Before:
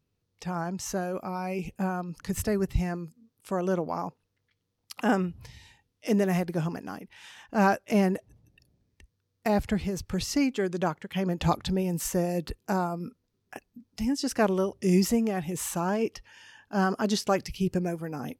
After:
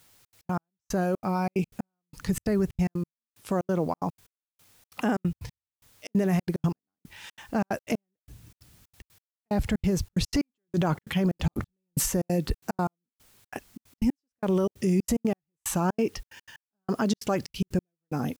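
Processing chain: bass shelf 240 Hz +6.5 dB; 10.34–12.07 s: transient shaper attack -2 dB, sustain +11 dB; peak limiter -20.5 dBFS, peak gain reduction 14 dB; level rider gain up to 4 dB; word length cut 10-bit, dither triangular; trance gate "xxx.x.x....xxx." 183 bpm -60 dB

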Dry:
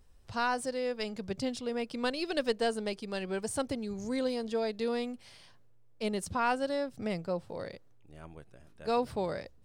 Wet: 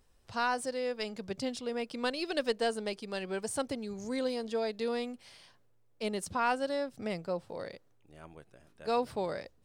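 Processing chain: bass shelf 150 Hz -8.5 dB

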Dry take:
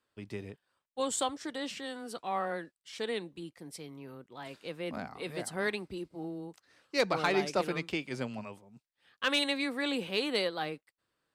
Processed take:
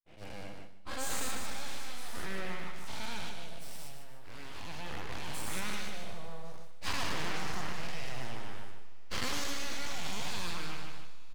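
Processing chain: every event in the spectrogram widened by 240 ms; full-wave rectifier; on a send: feedback delay 150 ms, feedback 43%, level -6.5 dB; on the sum: expander -35 dBFS; Schroeder reverb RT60 3.5 s, combs from 32 ms, DRR 18.5 dB; compression, threshold -19 dBFS, peak gain reduction 7 dB; trim -7 dB

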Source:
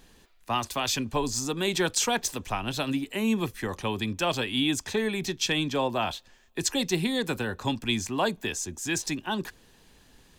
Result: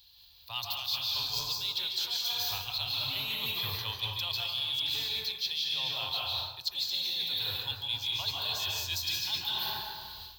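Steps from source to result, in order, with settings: FFT filter 100 Hz 0 dB, 210 Hz -30 dB, 320 Hz -26 dB, 930 Hz -7 dB, 1.8 kHz -13 dB, 4.2 kHz +15 dB, 6.6 kHz -11 dB, 9.8 kHz -18 dB, 15 kHz +13 dB; reverberation RT60 2.1 s, pre-delay 134 ms, DRR -3.5 dB; level rider gain up to 12 dB; in parallel at -12 dB: saturation -13 dBFS, distortion -12 dB; on the sum: high-pass 66 Hz; reverse; compression 10:1, threshold -23 dBFS, peak gain reduction 15.5 dB; reverse; companded quantiser 8-bit; treble shelf 5.2 kHz +6.5 dB; trim -9 dB

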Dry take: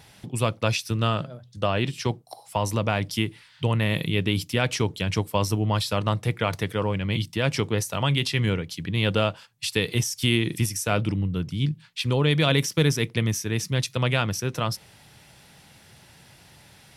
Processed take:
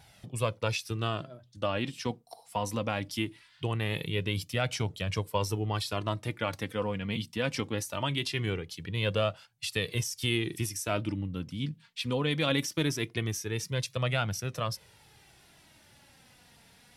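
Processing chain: flange 0.21 Hz, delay 1.3 ms, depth 3.1 ms, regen +32%; trim -2.5 dB

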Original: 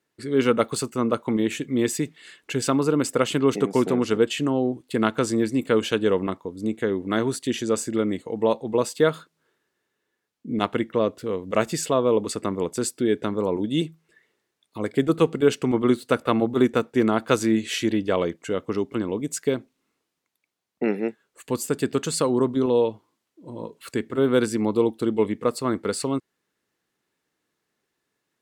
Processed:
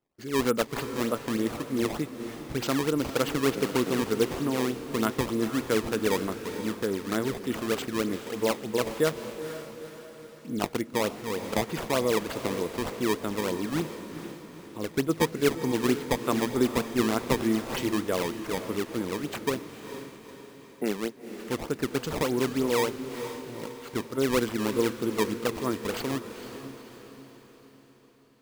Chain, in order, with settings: decimation with a swept rate 18×, swing 160% 3.3 Hz; echo that smears into a reverb 464 ms, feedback 51%, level -10 dB; trim -5.5 dB

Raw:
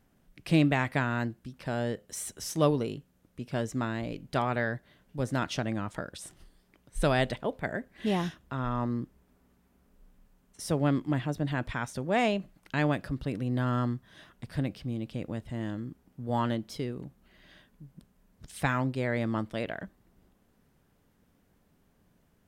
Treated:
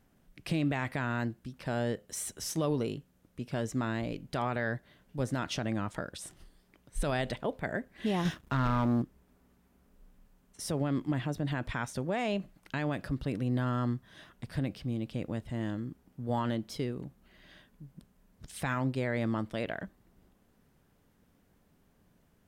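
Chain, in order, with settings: peak limiter -21.5 dBFS, peak gain reduction 8.5 dB; 8.25–9.02 s: waveshaping leveller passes 2

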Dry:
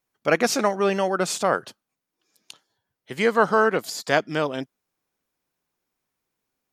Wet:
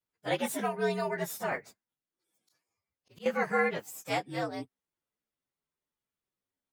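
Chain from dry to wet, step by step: frequency axis rescaled in octaves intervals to 116%; 1.50–3.26 s: slow attack 195 ms; trim -7 dB

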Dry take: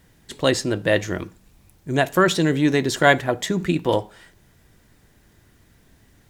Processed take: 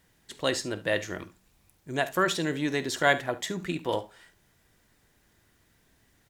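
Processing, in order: bass shelf 410 Hz -7 dB; on a send: early reflections 48 ms -17.5 dB, 71 ms -18 dB; on the sum: trim -6 dB

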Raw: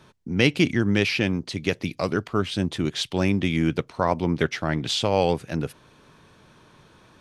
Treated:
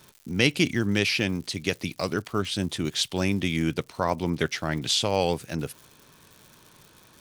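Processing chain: crackle 190 per s -42 dBFS; treble shelf 4.4 kHz +11.5 dB; trim -3.5 dB

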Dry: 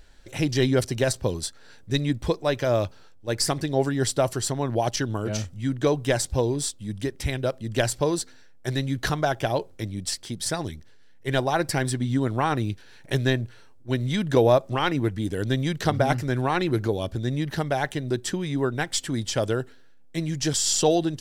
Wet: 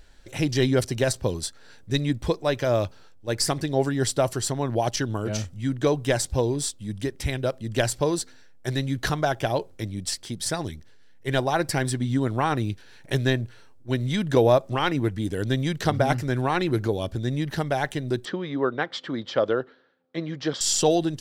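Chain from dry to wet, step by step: 18.25–20.61 s: cabinet simulation 210–3900 Hz, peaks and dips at 520 Hz +6 dB, 1.2 kHz +7 dB, 2.6 kHz -6 dB

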